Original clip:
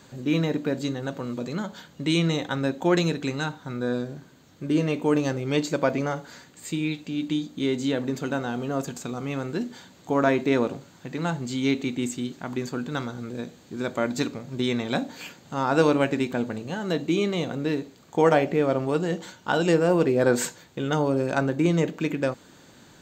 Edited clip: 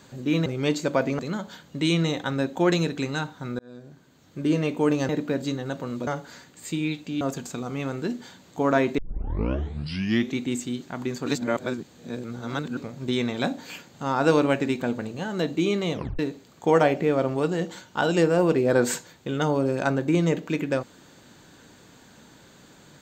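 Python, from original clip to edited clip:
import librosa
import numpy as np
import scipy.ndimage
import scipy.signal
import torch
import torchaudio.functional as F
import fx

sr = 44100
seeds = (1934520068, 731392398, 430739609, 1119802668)

y = fx.edit(x, sr, fx.swap(start_s=0.46, length_s=0.98, other_s=5.34, other_length_s=0.73),
    fx.fade_in_span(start_s=3.84, length_s=0.8),
    fx.cut(start_s=7.21, length_s=1.51),
    fx.tape_start(start_s=10.49, length_s=1.4),
    fx.reverse_span(start_s=12.77, length_s=1.51),
    fx.tape_stop(start_s=17.45, length_s=0.25), tone=tone)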